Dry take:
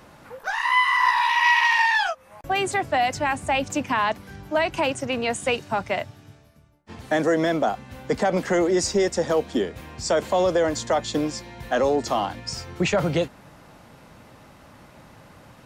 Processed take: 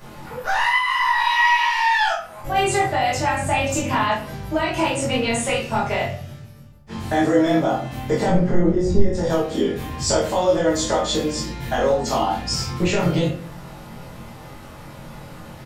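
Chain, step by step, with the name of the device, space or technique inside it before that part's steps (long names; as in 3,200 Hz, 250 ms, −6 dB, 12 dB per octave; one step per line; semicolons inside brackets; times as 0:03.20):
0:08.28–0:09.15: spectral tilt −4.5 dB per octave
ASMR close-microphone chain (low-shelf EQ 140 Hz +5.5 dB; downward compressor 5 to 1, threshold −25 dBFS, peak gain reduction 16 dB; high-shelf EQ 7,000 Hz +5.5 dB)
double-tracking delay 22 ms −2.5 dB
rectangular room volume 58 cubic metres, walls mixed, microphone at 1.3 metres
level −1 dB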